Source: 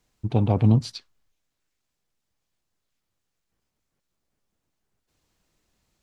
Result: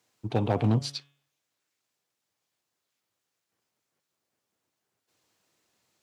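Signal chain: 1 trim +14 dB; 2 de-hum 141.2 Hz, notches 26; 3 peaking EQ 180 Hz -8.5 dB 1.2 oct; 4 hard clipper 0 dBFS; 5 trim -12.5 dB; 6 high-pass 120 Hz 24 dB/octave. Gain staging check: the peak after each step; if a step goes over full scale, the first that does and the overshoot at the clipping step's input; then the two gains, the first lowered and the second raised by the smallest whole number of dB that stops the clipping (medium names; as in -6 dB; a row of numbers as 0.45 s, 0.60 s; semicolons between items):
+7.5 dBFS, +7.0 dBFS, +4.0 dBFS, 0.0 dBFS, -12.5 dBFS, -11.5 dBFS; step 1, 4.0 dB; step 1 +10 dB, step 5 -8.5 dB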